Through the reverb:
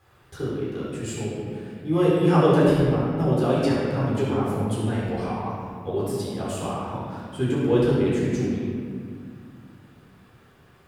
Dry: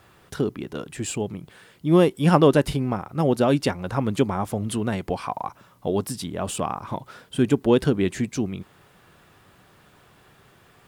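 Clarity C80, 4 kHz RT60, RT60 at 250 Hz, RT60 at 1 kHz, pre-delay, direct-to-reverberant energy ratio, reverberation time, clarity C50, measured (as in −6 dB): 0.0 dB, 1.3 s, 3.0 s, 1.9 s, 12 ms, −7.5 dB, 2.1 s, −2.5 dB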